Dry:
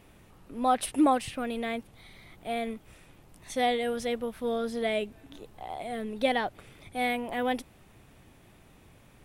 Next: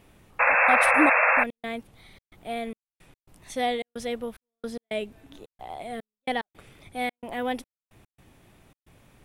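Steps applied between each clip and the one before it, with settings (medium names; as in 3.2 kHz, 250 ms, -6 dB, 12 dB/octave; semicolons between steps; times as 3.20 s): trance gate "xxxx.xxx..x." 110 bpm -60 dB; painted sound noise, 0.39–1.44 s, 470–2700 Hz -20 dBFS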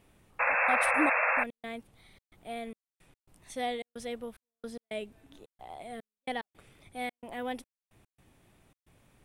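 peaking EQ 8.8 kHz +4 dB 0.32 oct; trim -7 dB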